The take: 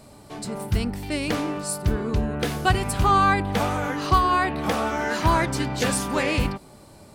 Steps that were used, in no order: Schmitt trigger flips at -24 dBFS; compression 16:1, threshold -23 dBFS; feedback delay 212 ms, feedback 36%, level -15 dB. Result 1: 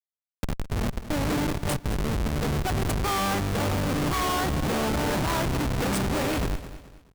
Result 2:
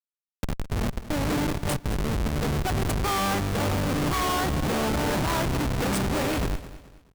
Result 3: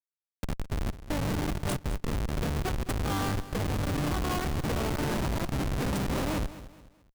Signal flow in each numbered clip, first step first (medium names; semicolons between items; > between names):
Schmitt trigger > feedback delay > compression; Schmitt trigger > compression > feedback delay; compression > Schmitt trigger > feedback delay